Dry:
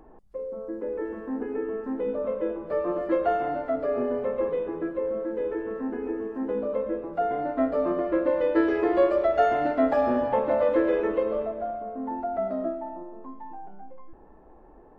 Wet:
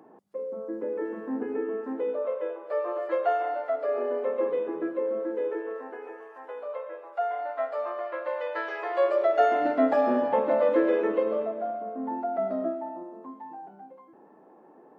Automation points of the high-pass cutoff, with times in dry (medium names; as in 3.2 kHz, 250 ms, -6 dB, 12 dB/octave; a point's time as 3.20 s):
high-pass 24 dB/octave
1.51 s 160 Hz
2.40 s 480 Hz
3.78 s 480 Hz
4.54 s 230 Hz
5.12 s 230 Hz
6.27 s 650 Hz
8.89 s 650 Hz
9.76 s 180 Hz